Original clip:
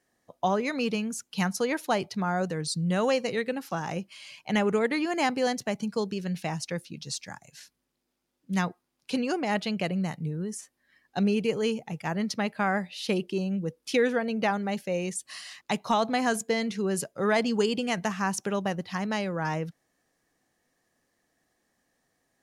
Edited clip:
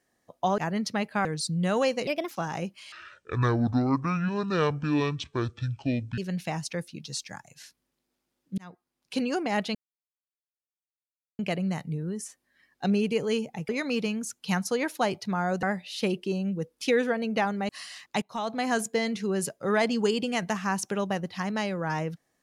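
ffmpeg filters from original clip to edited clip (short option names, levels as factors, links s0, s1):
-filter_complex "[0:a]asplit=13[s0][s1][s2][s3][s4][s5][s6][s7][s8][s9][s10][s11][s12];[s0]atrim=end=0.582[s13];[s1]atrim=start=12.018:end=12.692[s14];[s2]atrim=start=2.518:end=3.344[s15];[s3]atrim=start=3.34:end=3.65,asetpts=PTS-STARTPTS,asetrate=56889,aresample=44100[s16];[s4]atrim=start=3.646:end=4.264[s17];[s5]atrim=start=4.26:end=6.15,asetpts=PTS-STARTPTS,asetrate=25578,aresample=44100,atrim=end_sample=143705,asetpts=PTS-STARTPTS[s18];[s6]atrim=start=6.146:end=8.55,asetpts=PTS-STARTPTS,afade=t=out:st=2.4:d=0.004:c=hsin[s19];[s7]atrim=start=8.55:end=9.72,asetpts=PTS-STARTPTS,afade=t=in:d=0.61,afade=t=out:st=1.166:d=0.004:c=hsin,apad=pad_dur=1.64[s20];[s8]atrim=start=9.72:end=12.022,asetpts=PTS-STARTPTS,afade=t=in:d=0.004:c=hsin[s21];[s9]atrim=start=0.578:end=2.522[s22];[s10]atrim=start=12.688:end=14.752[s23];[s11]atrim=start=15.238:end=15.77,asetpts=PTS-STARTPTS,afade=t=out:st=0.528:d=0.004:c=hsin:silence=0.141254[s24];[s12]atrim=start=15.77,asetpts=PTS-STARTPTS,afade=t=in:d=0.55:silence=0.141254[s25];[s13][s14]acrossfade=d=0.004:c1=hsin:c2=hsin[s26];[s26][s15]acrossfade=d=0.004:c1=hsin:c2=hsin[s27];[s27][s16]acrossfade=d=0.004:c1=hsin:c2=hsin[s28];[s28][s17]acrossfade=d=0.004:c1=hsin:c2=hsin[s29];[s29][s18]acrossfade=d=0.004:c1=hsin:c2=hsin[s30];[s19][s20][s21]concat=n=3:v=0:a=1[s31];[s30][s31]acrossfade=d=0.004:c1=hsin:c2=hsin[s32];[s32][s22]acrossfade=d=0.004:c1=hsin:c2=hsin[s33];[s33][s23]acrossfade=d=0.004:c1=hsin:c2=hsin[s34];[s24][s25]concat=n=2:v=0:a=1[s35];[s34][s35]acrossfade=d=0.004:c1=hsin:c2=hsin"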